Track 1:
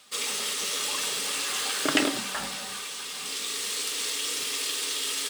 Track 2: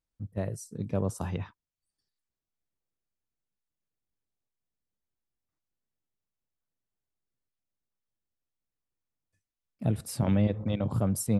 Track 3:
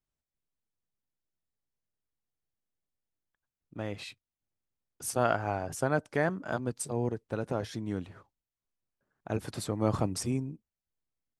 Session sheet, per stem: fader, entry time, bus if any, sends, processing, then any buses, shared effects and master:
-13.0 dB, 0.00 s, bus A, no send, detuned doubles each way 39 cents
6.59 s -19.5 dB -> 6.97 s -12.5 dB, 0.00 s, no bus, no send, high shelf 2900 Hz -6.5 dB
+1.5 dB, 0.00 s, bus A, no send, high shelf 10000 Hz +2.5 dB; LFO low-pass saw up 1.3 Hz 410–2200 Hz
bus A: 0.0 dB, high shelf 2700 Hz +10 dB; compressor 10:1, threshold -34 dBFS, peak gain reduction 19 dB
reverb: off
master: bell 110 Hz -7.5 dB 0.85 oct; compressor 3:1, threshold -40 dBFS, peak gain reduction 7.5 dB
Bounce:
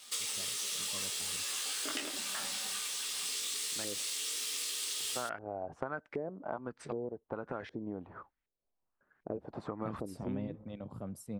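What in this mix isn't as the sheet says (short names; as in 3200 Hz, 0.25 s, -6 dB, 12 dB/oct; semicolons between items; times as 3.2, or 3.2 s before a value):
stem 1 -13.0 dB -> -1.0 dB; master: missing compressor 3:1, threshold -40 dBFS, peak gain reduction 7.5 dB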